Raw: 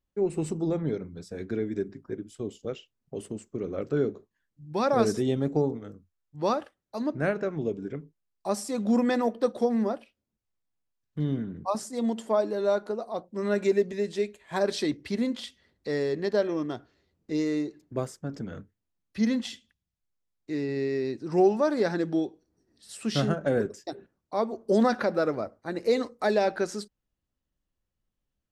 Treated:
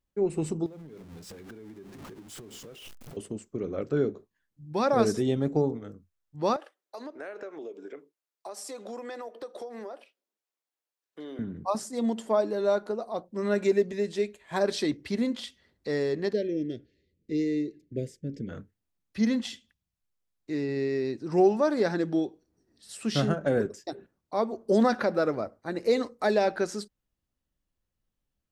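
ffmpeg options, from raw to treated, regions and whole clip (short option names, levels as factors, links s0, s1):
-filter_complex "[0:a]asettb=1/sr,asplit=3[s0][s1][s2];[s0]atrim=end=0.664[s3];[s1]atrim=start=0.66:end=3.17,asetpts=PTS-STARTPTS,afade=t=in:d=0.004:c=qsin,afade=t=out:st=2.506:d=0.004:c=qsin,aeval=exprs='val(0)+0.5*0.0133*sgn(val(0))':c=same,tremolo=f=5.8:d=0.44,acompressor=threshold=0.00794:ratio=12:attack=3.2:release=140:knee=1:detection=peak[s4];[s2]atrim=start=3.166[s5];[s3][s4]acrossfade=d=0.004:c1=hsin:c2=qsin[s6];[s6][s5]acrossfade=d=0.004:c1=qsin:c2=hsin,asettb=1/sr,asplit=3[s7][s8][s9];[s7]atrim=end=6.564[s10];[s8]atrim=start=6.56:end=11.39,asetpts=PTS-STARTPTS,afade=t=in:d=0.004:c=qsin,afade=t=out:st=4.826:d=0.004:c=qsin,highpass=f=360:w=0.5412,highpass=f=360:w=1.3066,acompressor=threshold=0.0158:ratio=6:attack=3.2:release=140:knee=1:detection=peak[s11];[s9]atrim=start=11.386[s12];[s10][s11]acrossfade=d=0.004:c1=hsin:c2=qsin[s13];[s13][s12]acrossfade=d=0.004:c1=qsin:c2=hsin,asettb=1/sr,asplit=3[s14][s15][s16];[s14]atrim=end=16.334[s17];[s15]atrim=start=16.33:end=18.49,asetpts=PTS-STARTPTS,afade=t=in:d=0.004:c=qsin,afade=t=out:st=2.156:d=0.004:c=qsin,asuperstop=centerf=1000:order=8:qfactor=0.73,highshelf=f=3900:g=-9.5[s18];[s16]atrim=start=18.486[s19];[s17][s18]acrossfade=d=0.004:c1=hsin:c2=qsin[s20];[s20][s19]acrossfade=d=0.004:c1=qsin:c2=hsin"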